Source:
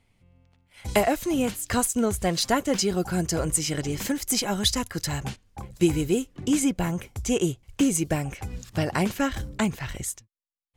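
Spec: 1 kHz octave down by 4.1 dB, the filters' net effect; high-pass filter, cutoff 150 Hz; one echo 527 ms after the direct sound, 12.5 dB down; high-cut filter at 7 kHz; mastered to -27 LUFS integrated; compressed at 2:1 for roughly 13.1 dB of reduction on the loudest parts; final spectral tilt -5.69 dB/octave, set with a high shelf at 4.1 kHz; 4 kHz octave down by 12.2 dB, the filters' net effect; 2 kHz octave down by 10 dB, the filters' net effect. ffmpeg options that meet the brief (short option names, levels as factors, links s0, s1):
-af "highpass=150,lowpass=7000,equalizer=f=1000:t=o:g=-3.5,equalizer=f=2000:t=o:g=-8,equalizer=f=4000:t=o:g=-8.5,highshelf=f=4100:g=-6.5,acompressor=threshold=0.00708:ratio=2,aecho=1:1:527:0.237,volume=4.22"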